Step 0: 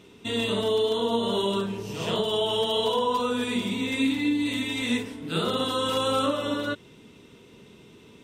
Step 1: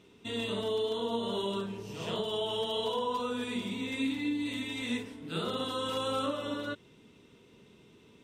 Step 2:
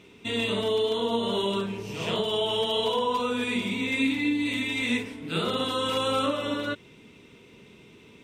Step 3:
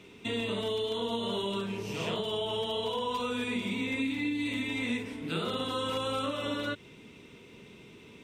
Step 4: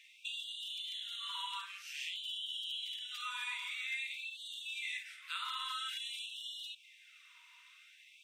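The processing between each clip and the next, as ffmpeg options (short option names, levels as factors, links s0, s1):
-af "highshelf=f=9700:g=-4,volume=0.422"
-af "equalizer=f=2300:w=3.3:g=7.5,volume=2"
-filter_complex "[0:a]acrossover=split=150|1600[s0][s1][s2];[s0]acompressor=threshold=0.00631:ratio=4[s3];[s1]acompressor=threshold=0.0251:ratio=4[s4];[s2]acompressor=threshold=0.0126:ratio=4[s5];[s3][s4][s5]amix=inputs=3:normalize=0"
-af "afftfilt=real='re*gte(b*sr/1024,890*pow(2800/890,0.5+0.5*sin(2*PI*0.5*pts/sr)))':imag='im*gte(b*sr/1024,890*pow(2800/890,0.5+0.5*sin(2*PI*0.5*pts/sr)))':win_size=1024:overlap=0.75,volume=0.75"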